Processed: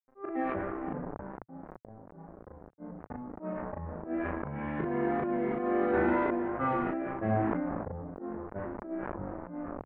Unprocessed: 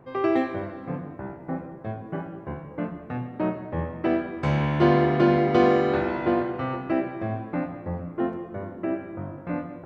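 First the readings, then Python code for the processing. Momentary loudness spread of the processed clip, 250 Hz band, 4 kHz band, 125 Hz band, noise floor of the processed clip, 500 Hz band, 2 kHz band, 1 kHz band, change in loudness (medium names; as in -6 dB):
19 LU, -7.5 dB, under -20 dB, -11.0 dB, -56 dBFS, -8.0 dB, -6.5 dB, -6.0 dB, -7.0 dB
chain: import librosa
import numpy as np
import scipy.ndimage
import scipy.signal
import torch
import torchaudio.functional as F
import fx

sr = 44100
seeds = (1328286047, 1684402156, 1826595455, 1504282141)

p1 = fx.bin_expand(x, sr, power=1.5)
p2 = p1 + fx.echo_filtered(p1, sr, ms=473, feedback_pct=17, hz=1000.0, wet_db=-18, dry=0)
p3 = fx.rider(p2, sr, range_db=3, speed_s=0.5)
p4 = np.sign(p3) * np.maximum(np.abs(p3) - 10.0 ** (-40.5 / 20.0), 0.0)
p5 = fx.auto_swell(p4, sr, attack_ms=604.0)
p6 = fx.peak_eq(p5, sr, hz=120.0, db=-14.0, octaves=0.26)
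p7 = fx.wow_flutter(p6, sr, seeds[0], rate_hz=2.1, depth_cents=19.0)
p8 = 10.0 ** (-27.0 / 20.0) * np.tanh(p7 / 10.0 ** (-27.0 / 20.0))
p9 = fx.env_lowpass(p8, sr, base_hz=710.0, full_db=-33.0)
p10 = scipy.signal.sosfilt(scipy.signal.butter(4, 2000.0, 'lowpass', fs=sr, output='sos'), p9)
p11 = fx.doubler(p10, sr, ms=37.0, db=-3.5)
p12 = fx.sustainer(p11, sr, db_per_s=20.0)
y = p12 * 10.0 ** (7.0 / 20.0)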